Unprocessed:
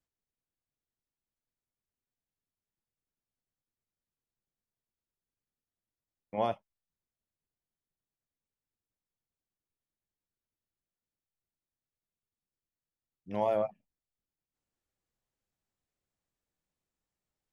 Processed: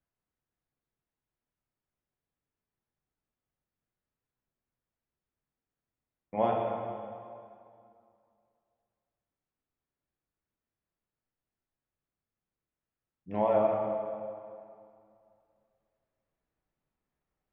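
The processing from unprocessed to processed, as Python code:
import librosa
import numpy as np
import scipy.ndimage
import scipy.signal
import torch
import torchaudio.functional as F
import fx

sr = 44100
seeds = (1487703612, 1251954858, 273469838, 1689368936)

y = scipy.signal.sosfilt(scipy.signal.butter(2, 2100.0, 'lowpass', fs=sr, output='sos'), x)
y = fx.rev_plate(y, sr, seeds[0], rt60_s=2.4, hf_ratio=0.8, predelay_ms=0, drr_db=-2.0)
y = F.gain(torch.from_numpy(y), 1.5).numpy()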